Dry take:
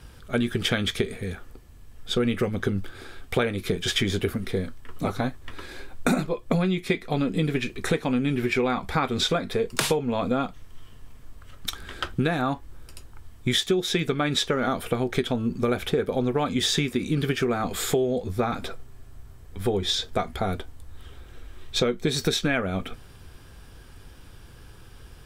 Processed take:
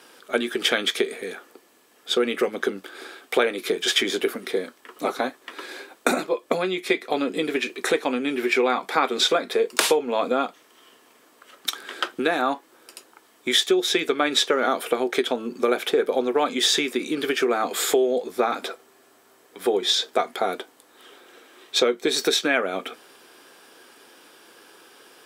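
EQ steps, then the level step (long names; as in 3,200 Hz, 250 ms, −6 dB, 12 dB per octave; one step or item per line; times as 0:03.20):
high-pass filter 310 Hz 24 dB per octave
+4.5 dB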